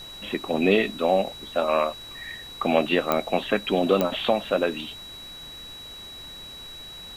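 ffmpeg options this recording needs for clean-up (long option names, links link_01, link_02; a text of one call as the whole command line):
ffmpeg -i in.wav -af "adeclick=threshold=4,bandreject=frequency=3900:width=30,afftdn=noise_reduction=28:noise_floor=-41" out.wav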